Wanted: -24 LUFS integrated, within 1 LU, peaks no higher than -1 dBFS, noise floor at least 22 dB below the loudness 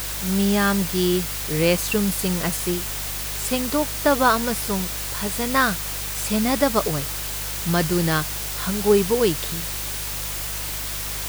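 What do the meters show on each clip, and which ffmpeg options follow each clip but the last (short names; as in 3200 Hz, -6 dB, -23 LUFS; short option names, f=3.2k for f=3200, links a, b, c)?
hum 50 Hz; harmonics up to 150 Hz; hum level -33 dBFS; noise floor -29 dBFS; noise floor target -44 dBFS; loudness -22.0 LUFS; peak -4.0 dBFS; loudness target -24.0 LUFS
-> -af "bandreject=f=50:t=h:w=4,bandreject=f=100:t=h:w=4,bandreject=f=150:t=h:w=4"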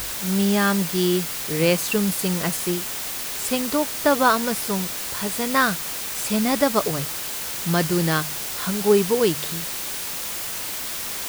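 hum none; noise floor -30 dBFS; noise floor target -44 dBFS
-> -af "afftdn=nr=14:nf=-30"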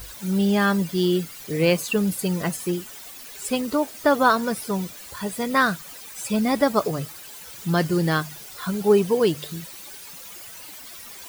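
noise floor -41 dBFS; noise floor target -45 dBFS
-> -af "afftdn=nr=6:nf=-41"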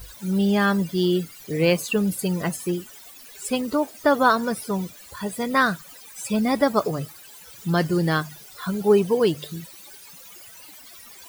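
noise floor -45 dBFS; loudness -23.0 LUFS; peak -4.5 dBFS; loudness target -24.0 LUFS
-> -af "volume=-1dB"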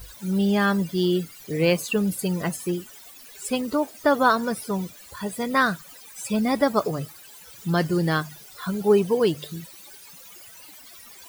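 loudness -24.0 LUFS; peak -5.5 dBFS; noise floor -46 dBFS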